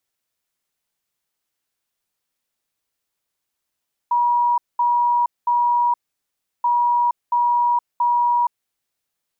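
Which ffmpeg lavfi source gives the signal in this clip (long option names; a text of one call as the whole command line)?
ffmpeg -f lavfi -i "aevalsrc='0.188*sin(2*PI*961*t)*clip(min(mod(mod(t,2.53),0.68),0.47-mod(mod(t,2.53),0.68))/0.005,0,1)*lt(mod(t,2.53),2.04)':duration=5.06:sample_rate=44100" out.wav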